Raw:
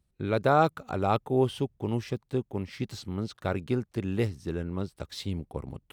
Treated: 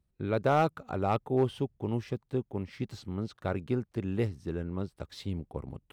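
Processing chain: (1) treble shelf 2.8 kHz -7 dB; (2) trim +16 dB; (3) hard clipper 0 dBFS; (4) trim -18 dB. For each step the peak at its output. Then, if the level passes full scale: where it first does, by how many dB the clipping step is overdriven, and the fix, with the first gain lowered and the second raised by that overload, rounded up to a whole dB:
-10.5 dBFS, +5.5 dBFS, 0.0 dBFS, -18.0 dBFS; step 2, 5.5 dB; step 2 +10 dB, step 4 -12 dB

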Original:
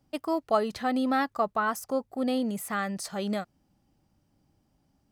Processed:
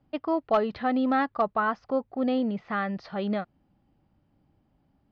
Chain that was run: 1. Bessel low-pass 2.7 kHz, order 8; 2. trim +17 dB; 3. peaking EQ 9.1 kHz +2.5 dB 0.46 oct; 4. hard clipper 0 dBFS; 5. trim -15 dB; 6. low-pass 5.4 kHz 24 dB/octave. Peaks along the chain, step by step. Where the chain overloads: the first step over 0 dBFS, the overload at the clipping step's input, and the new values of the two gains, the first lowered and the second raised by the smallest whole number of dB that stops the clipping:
-12.5 dBFS, +4.5 dBFS, +4.5 dBFS, 0.0 dBFS, -15.0 dBFS, -14.5 dBFS; step 2, 4.5 dB; step 2 +12 dB, step 5 -10 dB

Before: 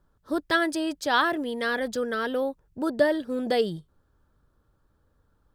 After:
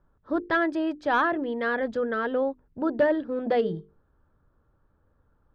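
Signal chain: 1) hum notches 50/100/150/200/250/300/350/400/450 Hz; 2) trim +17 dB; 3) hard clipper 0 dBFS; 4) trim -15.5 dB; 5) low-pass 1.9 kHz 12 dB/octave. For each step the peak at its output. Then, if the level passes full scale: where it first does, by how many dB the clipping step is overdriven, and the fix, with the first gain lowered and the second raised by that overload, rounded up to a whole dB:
-9.5 dBFS, +7.5 dBFS, 0.0 dBFS, -15.5 dBFS, -15.0 dBFS; step 2, 7.5 dB; step 2 +9 dB, step 4 -7.5 dB

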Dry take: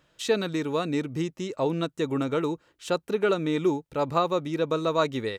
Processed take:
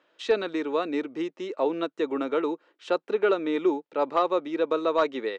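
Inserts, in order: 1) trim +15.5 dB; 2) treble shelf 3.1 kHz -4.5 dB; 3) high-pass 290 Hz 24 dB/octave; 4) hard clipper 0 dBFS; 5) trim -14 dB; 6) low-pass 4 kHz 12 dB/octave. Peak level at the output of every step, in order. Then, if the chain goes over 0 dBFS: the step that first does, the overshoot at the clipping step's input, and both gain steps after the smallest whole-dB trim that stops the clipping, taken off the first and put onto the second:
+5.5 dBFS, +5.0 dBFS, +5.0 dBFS, 0.0 dBFS, -14.0 dBFS, -13.5 dBFS; step 1, 5.0 dB; step 1 +10.5 dB, step 5 -9 dB

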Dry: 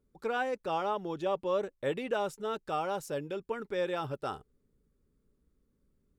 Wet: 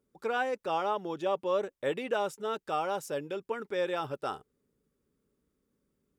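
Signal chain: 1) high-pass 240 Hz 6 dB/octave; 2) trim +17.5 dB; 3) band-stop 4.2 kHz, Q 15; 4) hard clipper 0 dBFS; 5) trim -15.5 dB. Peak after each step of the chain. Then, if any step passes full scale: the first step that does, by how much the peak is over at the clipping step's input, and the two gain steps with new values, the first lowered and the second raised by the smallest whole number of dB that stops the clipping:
-20.5 dBFS, -3.0 dBFS, -3.0 dBFS, -3.0 dBFS, -18.5 dBFS; nothing clips

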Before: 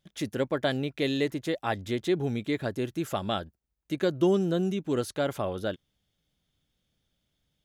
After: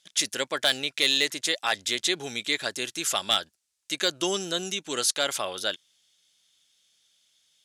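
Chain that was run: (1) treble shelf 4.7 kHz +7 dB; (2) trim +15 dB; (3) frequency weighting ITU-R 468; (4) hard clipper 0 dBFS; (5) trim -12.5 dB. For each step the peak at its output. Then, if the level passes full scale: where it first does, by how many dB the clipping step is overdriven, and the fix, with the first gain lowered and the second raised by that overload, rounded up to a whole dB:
-12.5 dBFS, +2.5 dBFS, +7.0 dBFS, 0.0 dBFS, -12.5 dBFS; step 2, 7.0 dB; step 2 +8 dB, step 5 -5.5 dB

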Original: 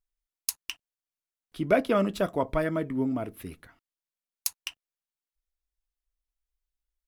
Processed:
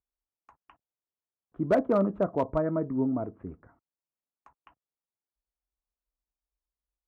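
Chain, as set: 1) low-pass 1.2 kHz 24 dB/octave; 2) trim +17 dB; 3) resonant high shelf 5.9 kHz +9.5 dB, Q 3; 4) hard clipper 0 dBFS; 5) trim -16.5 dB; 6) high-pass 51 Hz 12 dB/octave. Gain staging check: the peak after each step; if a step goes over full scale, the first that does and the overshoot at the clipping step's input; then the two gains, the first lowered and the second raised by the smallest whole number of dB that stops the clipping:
-11.5 dBFS, +5.5 dBFS, +5.5 dBFS, 0.0 dBFS, -16.5 dBFS, -14.5 dBFS; step 2, 5.5 dB; step 2 +11 dB, step 5 -10.5 dB

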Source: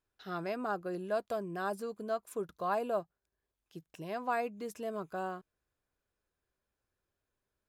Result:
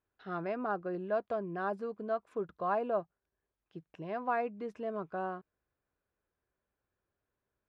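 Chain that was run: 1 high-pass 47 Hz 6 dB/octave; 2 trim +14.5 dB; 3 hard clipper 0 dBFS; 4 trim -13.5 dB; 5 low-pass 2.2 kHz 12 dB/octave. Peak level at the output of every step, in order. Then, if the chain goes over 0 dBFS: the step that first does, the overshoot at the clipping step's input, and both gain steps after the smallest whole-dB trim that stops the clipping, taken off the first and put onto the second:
-20.0 dBFS, -5.5 dBFS, -5.5 dBFS, -19.0 dBFS, -19.5 dBFS; nothing clips

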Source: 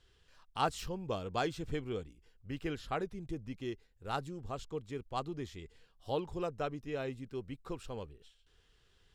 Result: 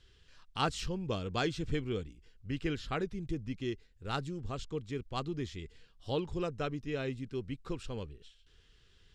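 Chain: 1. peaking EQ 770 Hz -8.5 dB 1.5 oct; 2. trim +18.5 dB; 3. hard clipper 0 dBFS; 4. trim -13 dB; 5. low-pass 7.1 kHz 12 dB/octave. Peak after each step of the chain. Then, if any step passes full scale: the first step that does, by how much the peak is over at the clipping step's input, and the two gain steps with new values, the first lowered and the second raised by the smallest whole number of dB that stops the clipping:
-23.5 dBFS, -5.0 dBFS, -5.0 dBFS, -18.0 dBFS, -18.0 dBFS; nothing clips

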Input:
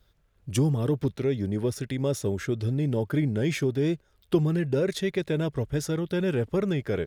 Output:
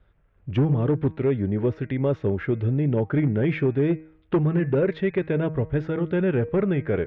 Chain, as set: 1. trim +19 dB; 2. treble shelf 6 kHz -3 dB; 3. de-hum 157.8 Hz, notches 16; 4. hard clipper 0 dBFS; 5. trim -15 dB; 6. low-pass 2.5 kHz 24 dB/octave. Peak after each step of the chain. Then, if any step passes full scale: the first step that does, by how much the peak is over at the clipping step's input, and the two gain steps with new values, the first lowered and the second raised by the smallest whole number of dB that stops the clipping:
+8.5 dBFS, +8.5 dBFS, +8.0 dBFS, 0.0 dBFS, -15.0 dBFS, -14.0 dBFS; step 1, 8.0 dB; step 1 +11 dB, step 5 -7 dB

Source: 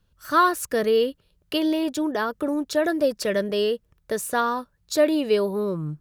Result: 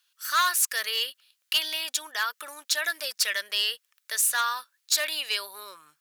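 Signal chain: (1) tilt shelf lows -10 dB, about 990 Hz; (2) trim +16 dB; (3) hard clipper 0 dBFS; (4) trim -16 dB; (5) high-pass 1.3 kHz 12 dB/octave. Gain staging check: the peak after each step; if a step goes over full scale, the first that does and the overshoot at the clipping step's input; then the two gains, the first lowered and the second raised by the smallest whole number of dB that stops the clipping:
-7.0 dBFS, +9.0 dBFS, 0.0 dBFS, -16.0 dBFS, -11.5 dBFS; step 2, 9.0 dB; step 2 +7 dB, step 4 -7 dB

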